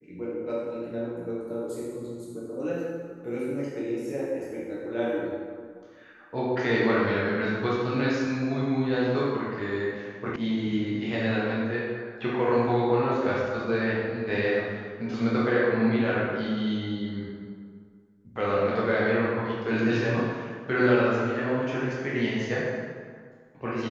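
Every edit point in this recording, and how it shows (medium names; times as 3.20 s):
10.36 s: sound stops dead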